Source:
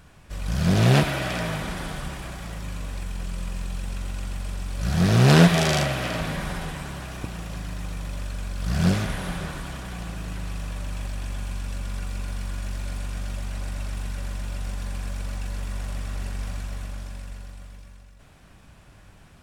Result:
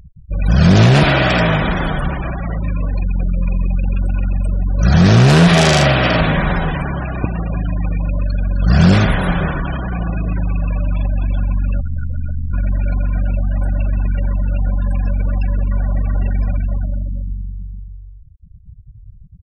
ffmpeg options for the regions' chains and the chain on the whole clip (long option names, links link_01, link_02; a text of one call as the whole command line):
ffmpeg -i in.wav -filter_complex "[0:a]asettb=1/sr,asplit=3[link_01][link_02][link_03];[link_01]atrim=end=11.804[link_04];[link_02]atrim=start=11.8:end=12.53,asetpts=PTS-STARTPTS,afade=type=in:duration=0.004:curve=qsin,afade=type=out:start_time=0.726:duration=0.004:curve=qsin,lowpass=3700,equalizer=frequency=170:width=0.57:gain=-4,aeval=exprs='val(0)*sin(2*PI*31*n/s)':channel_layout=same[link_05];[link_03]atrim=start=12.526[link_06];[link_04][link_05]acrossfade=duration=0.004:curve1=hsin:curve2=qsin[link_07];[link_07][link_06]acrossfade=duration=0.004:curve1=qsin:curve2=hsin,afftfilt=real='re*gte(hypot(re,im),0.02)':imag='im*gte(hypot(re,im),0.02)':win_size=1024:overlap=0.75,acontrast=67,alimiter=level_in=8.5dB:limit=-1dB:release=50:level=0:latency=1,volume=-1dB" out.wav